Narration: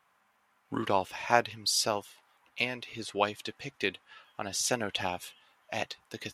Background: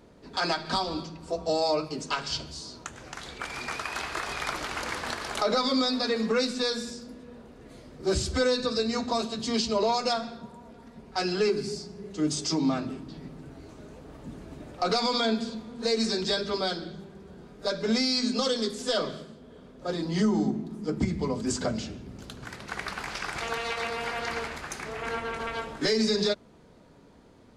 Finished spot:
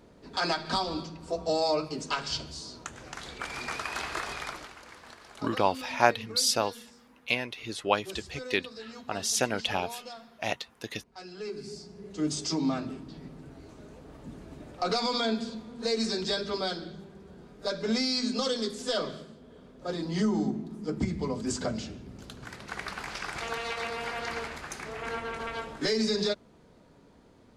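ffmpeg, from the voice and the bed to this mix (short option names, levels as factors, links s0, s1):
-filter_complex "[0:a]adelay=4700,volume=1.33[s0];[1:a]volume=4.47,afade=t=out:st=4.17:d=0.59:silence=0.16788,afade=t=in:st=11.35:d=0.83:silence=0.199526[s1];[s0][s1]amix=inputs=2:normalize=0"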